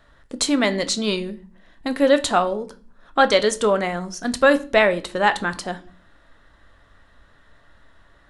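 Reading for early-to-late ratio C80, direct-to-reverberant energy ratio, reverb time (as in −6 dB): 23.0 dB, 10.0 dB, 0.40 s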